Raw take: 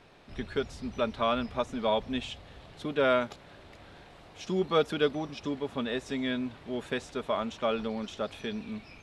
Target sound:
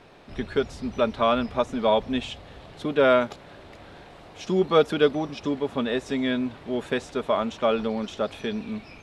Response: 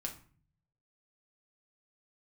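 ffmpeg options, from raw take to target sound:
-af "equalizer=frequency=470:width=0.39:gain=3.5,volume=3.5dB"

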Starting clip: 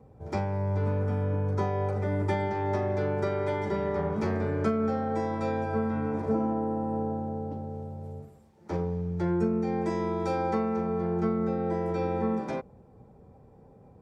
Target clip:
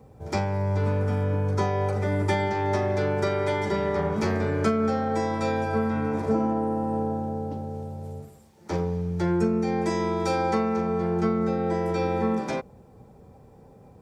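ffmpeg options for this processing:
ffmpeg -i in.wav -af "highshelf=frequency=2500:gain=10.5,volume=3dB" out.wav

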